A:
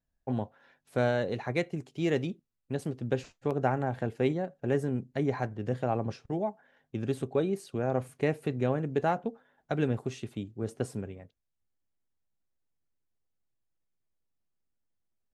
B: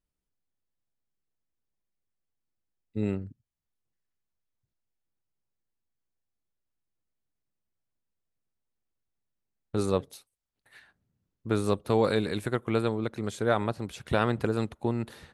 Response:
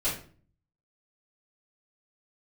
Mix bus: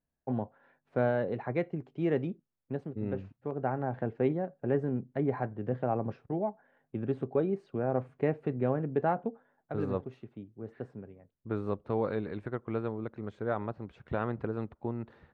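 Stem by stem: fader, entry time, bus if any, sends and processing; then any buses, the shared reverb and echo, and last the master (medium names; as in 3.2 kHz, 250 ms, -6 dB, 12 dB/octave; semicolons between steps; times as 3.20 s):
-0.5 dB, 0.00 s, no send, high-pass 99 Hz; auto duck -7 dB, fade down 0.25 s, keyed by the second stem
-6.5 dB, 0.00 s, no send, none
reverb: none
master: low-pass 1.6 kHz 12 dB/octave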